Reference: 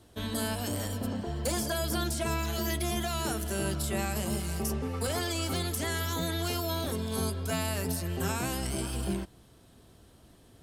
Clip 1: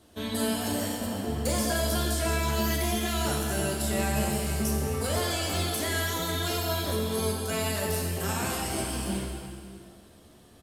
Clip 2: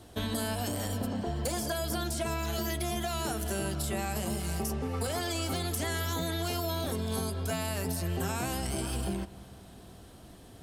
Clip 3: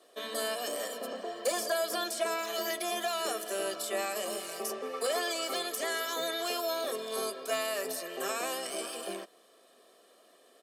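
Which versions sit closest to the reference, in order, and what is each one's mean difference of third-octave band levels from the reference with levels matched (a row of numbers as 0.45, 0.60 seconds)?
2, 1, 3; 2.0, 3.5, 7.0 decibels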